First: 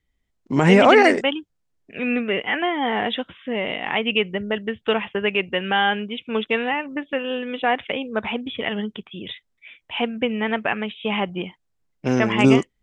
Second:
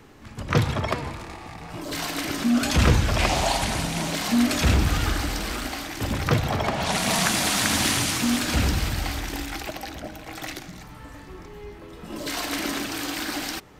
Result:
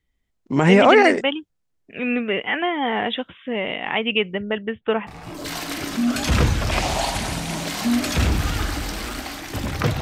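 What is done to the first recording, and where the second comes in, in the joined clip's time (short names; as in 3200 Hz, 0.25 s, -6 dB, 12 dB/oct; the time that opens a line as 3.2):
first
4.26–5.07 LPF 7300 Hz -> 1500 Hz
5.07 switch to second from 1.54 s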